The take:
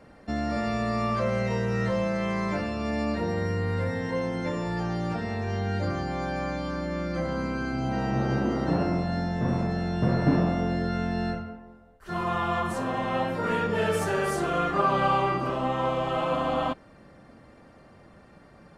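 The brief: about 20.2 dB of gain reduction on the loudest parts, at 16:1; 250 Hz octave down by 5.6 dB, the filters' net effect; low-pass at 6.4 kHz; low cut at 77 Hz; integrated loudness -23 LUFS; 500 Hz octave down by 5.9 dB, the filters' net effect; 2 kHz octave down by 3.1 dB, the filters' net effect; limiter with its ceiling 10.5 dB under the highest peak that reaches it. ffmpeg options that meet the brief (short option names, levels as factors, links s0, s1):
-af "highpass=77,lowpass=6400,equalizer=f=250:t=o:g=-6.5,equalizer=f=500:t=o:g=-5.5,equalizer=f=2000:t=o:g=-3.5,acompressor=threshold=0.00794:ratio=16,volume=26.6,alimiter=limit=0.188:level=0:latency=1"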